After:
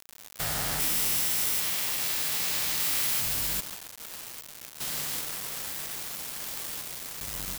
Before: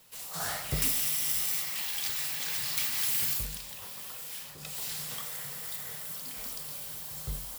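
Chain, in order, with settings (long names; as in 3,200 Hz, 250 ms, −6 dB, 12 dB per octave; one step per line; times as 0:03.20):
spectrum averaged block by block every 400 ms
in parallel at −1.5 dB: brickwall limiter −27.5 dBFS, peak gain reduction 9 dB
on the sum: echo with shifted repeats 141 ms, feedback 53%, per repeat +140 Hz, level −10 dB
bit reduction 5 bits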